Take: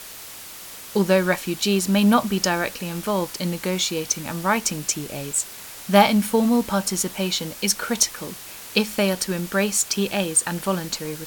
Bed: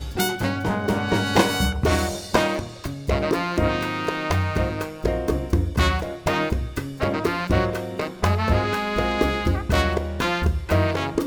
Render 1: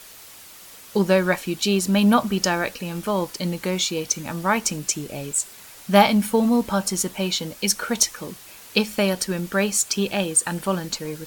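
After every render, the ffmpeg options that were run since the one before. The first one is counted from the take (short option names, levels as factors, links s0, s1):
-af "afftdn=nr=6:nf=-39"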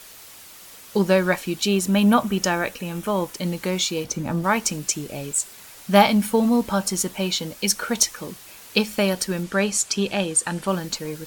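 -filter_complex "[0:a]asettb=1/sr,asplit=3[s0][s1][s2];[s0]atrim=end=1.654[s3];[s1]atrim=start=1.65:end=3.46,asetpts=PTS-STARTPTS,afade=t=in:d=0.004:c=qsin,afade=t=out:st=1.806:d=0.004:c=qsin,equalizer=f=4600:t=o:w=0.37:g=-6.5[s4];[s2]atrim=start=3.456[s5];[s3][s4]acrossfade=d=0.004:c1=hsin:c2=qsin[s6];[s6][s5]acrossfade=d=0.004:c1=qsin:c2=hsin,asettb=1/sr,asplit=3[s7][s8][s9];[s7]atrim=end=4.044[s10];[s8]atrim=start=4.04:end=4.44,asetpts=PTS-STARTPTS,afade=t=in:d=0.004:c=qsin,afade=t=out:st=0.396:d=0.004:c=qsin,tiltshelf=f=1200:g=6.5[s11];[s9]atrim=start=4.436[s12];[s10][s11]acrossfade=d=0.004:c1=hsin:c2=qsin[s13];[s13][s12]acrossfade=d=0.004:c1=qsin:c2=hsin,asettb=1/sr,asplit=3[s14][s15][s16];[s14]atrim=end=9.434[s17];[s15]atrim=start=9.43:end=10.68,asetpts=PTS-STARTPTS,afade=t=in:d=0.004:c=qsin,afade=t=out:st=1.246:d=0.004:c=qsin,lowpass=9900[s18];[s16]atrim=start=10.676[s19];[s17][s18]acrossfade=d=0.004:c1=hsin:c2=qsin[s20];[s20][s19]acrossfade=d=0.004:c1=qsin:c2=hsin"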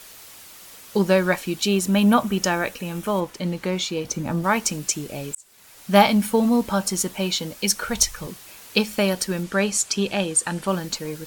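-filter_complex "[0:a]asettb=1/sr,asplit=3[s0][s1][s2];[s0]atrim=end=3.204[s3];[s1]atrim=start=3.2:end=4.05,asetpts=PTS-STARTPTS,afade=t=in:d=0.004:c=qsin,afade=t=out:st=0.846:d=0.004:c=qsin,highshelf=f=5800:g=-10.5[s4];[s2]atrim=start=4.046[s5];[s3][s4]acrossfade=d=0.004:c1=hsin:c2=qsin[s6];[s6][s5]acrossfade=d=0.004:c1=qsin:c2=hsin,asplit=3[s7][s8][s9];[s7]afade=t=out:st=7.83:d=0.02[s10];[s8]asubboost=boost=10:cutoff=86,afade=t=in:st=7.83:d=0.02,afade=t=out:st=8.26:d=0.02[s11];[s9]afade=t=in:st=8.26:d=0.02[s12];[s10][s11][s12]amix=inputs=3:normalize=0,asplit=2[s13][s14];[s13]atrim=end=5.35,asetpts=PTS-STARTPTS,afade=t=out:st=5.346:d=0.004:c=hsin[s15];[s14]atrim=start=5.35,asetpts=PTS-STARTPTS,afade=t=in:d=0.62[s16];[s15][s16]concat=n=2:v=0:a=1"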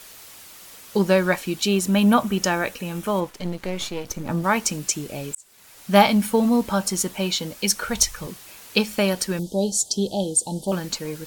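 -filter_complex "[0:a]asettb=1/sr,asplit=3[s0][s1][s2];[s0]atrim=end=3.294[s3];[s1]atrim=start=3.29:end=4.29,asetpts=PTS-STARTPTS,afade=t=in:d=0.004:c=qsin,afade=t=out:st=0.996:d=0.004:c=qsin,aeval=exprs='if(lt(val(0),0),0.251*val(0),val(0))':c=same[s4];[s2]atrim=start=4.286[s5];[s3][s4]acrossfade=d=0.004:c1=hsin:c2=qsin[s6];[s6][s5]acrossfade=d=0.004:c1=qsin:c2=hsin,asettb=1/sr,asplit=3[s7][s8][s9];[s7]atrim=end=9.394[s10];[s8]atrim=start=9.39:end=10.72,asetpts=PTS-STARTPTS,afade=t=in:d=0.004:c=qsin,afade=t=out:st=1.326:d=0.004:c=qsin,asuperstop=centerf=1700:order=12:qfactor=0.68[s11];[s9]atrim=start=10.716[s12];[s10][s11]acrossfade=d=0.004:c1=hsin:c2=qsin[s13];[s13][s12]acrossfade=d=0.004:c1=qsin:c2=hsin"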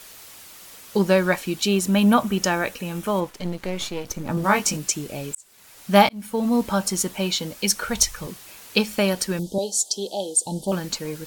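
-filter_complex "[0:a]asettb=1/sr,asplit=3[s0][s1][s2];[s0]atrim=end=4.354[s3];[s1]atrim=start=4.35:end=4.77,asetpts=PTS-STARTPTS,afade=t=in:d=0.004:c=qsin,afade=t=out:st=0.416:d=0.004:c=qsin,asplit=2[s4][s5];[s5]adelay=20,volume=0.708[s6];[s4][s6]amix=inputs=2:normalize=0,atrim=end_sample=18522[s7];[s2]atrim=start=4.766[s8];[s3][s7]acrossfade=d=0.004:c1=hsin:c2=qsin[s9];[s9][s8]acrossfade=d=0.004:c1=qsin:c2=hsin,asettb=1/sr,asplit=3[s10][s11][s12];[s10]atrim=end=9.584[s13];[s11]atrim=start=9.58:end=10.46,asetpts=PTS-STARTPTS,afade=t=in:d=0.004:c=qsin,afade=t=out:st=0.876:d=0.004:c=qsin,highpass=410[s14];[s12]atrim=start=10.456[s15];[s13][s14]acrossfade=d=0.004:c1=hsin:c2=qsin[s16];[s16][s15]acrossfade=d=0.004:c1=qsin:c2=hsin,asplit=2[s17][s18];[s17]atrim=end=6.09,asetpts=PTS-STARTPTS,afade=t=out:st=6.086:d=0.004:c=hsin[s19];[s18]atrim=start=6.09,asetpts=PTS-STARTPTS,afade=t=in:d=0.52[s20];[s19][s20]concat=n=2:v=0:a=1"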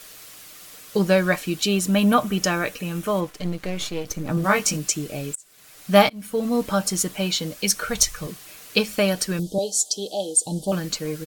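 -af "bandreject=f=900:w=7.4,aecho=1:1:6.6:0.35"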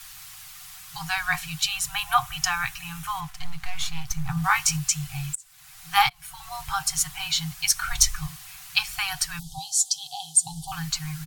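-af "lowshelf=f=79:g=9.5,afftfilt=real='re*(1-between(b*sr/4096,170,720))':imag='im*(1-between(b*sr/4096,170,720))':win_size=4096:overlap=0.75"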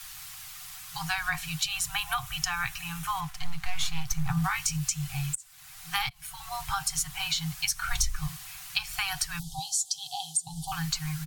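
-filter_complex "[0:a]acrossover=split=210|1700[s0][s1][s2];[s1]alimiter=limit=0.119:level=0:latency=1:release=480[s3];[s0][s3][s2]amix=inputs=3:normalize=0,acrossover=split=150[s4][s5];[s5]acompressor=threshold=0.0562:ratio=10[s6];[s4][s6]amix=inputs=2:normalize=0"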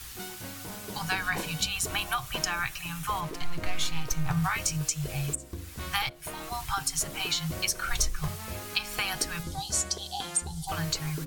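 -filter_complex "[1:a]volume=0.112[s0];[0:a][s0]amix=inputs=2:normalize=0"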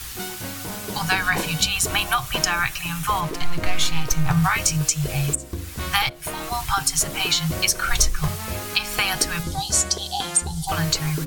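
-af "volume=2.66,alimiter=limit=0.794:level=0:latency=1"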